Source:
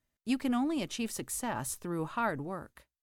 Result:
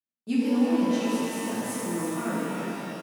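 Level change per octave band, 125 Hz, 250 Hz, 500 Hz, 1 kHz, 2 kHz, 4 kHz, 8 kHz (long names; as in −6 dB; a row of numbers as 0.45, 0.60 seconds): +4.0, +8.5, +8.0, +2.5, +4.0, +4.0, +2.0 decibels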